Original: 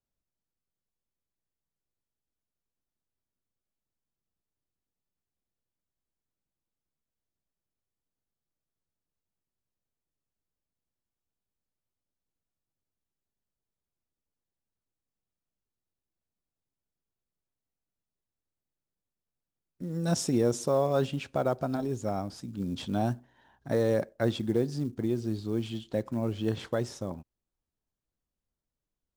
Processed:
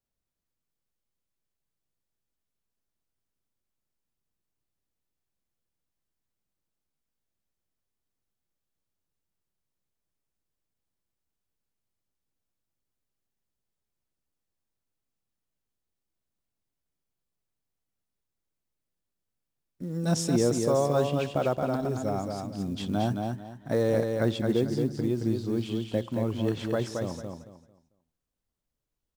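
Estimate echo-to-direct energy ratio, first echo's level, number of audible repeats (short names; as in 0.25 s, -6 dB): -4.0 dB, -4.5 dB, 3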